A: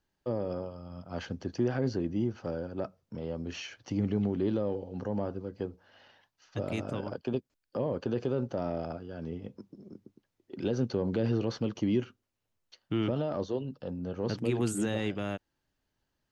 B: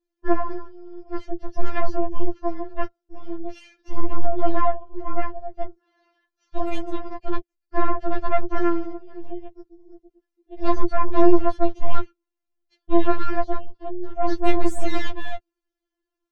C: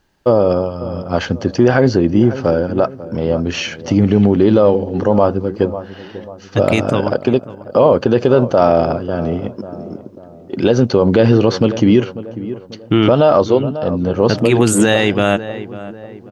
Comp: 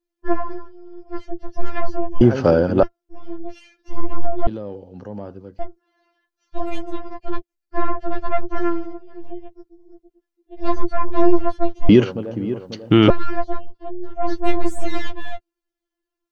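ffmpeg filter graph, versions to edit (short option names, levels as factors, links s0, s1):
-filter_complex "[2:a]asplit=2[s0][s1];[1:a]asplit=4[s2][s3][s4][s5];[s2]atrim=end=2.212[s6];[s0]atrim=start=2.208:end=2.832[s7];[s3]atrim=start=2.828:end=4.472[s8];[0:a]atrim=start=4.468:end=5.592[s9];[s4]atrim=start=5.588:end=11.892[s10];[s1]atrim=start=11.888:end=13.102[s11];[s5]atrim=start=13.098[s12];[s6][s7]acrossfade=d=0.004:c1=hsin:c2=hsin[s13];[s13][s8]acrossfade=d=0.004:c1=hsin:c2=hsin[s14];[s14][s9]acrossfade=d=0.004:c1=hsin:c2=hsin[s15];[s15][s10]acrossfade=d=0.004:c1=hsin:c2=hsin[s16];[s16][s11]acrossfade=d=0.004:c1=hsin:c2=hsin[s17];[s17][s12]acrossfade=d=0.004:c1=hsin:c2=hsin"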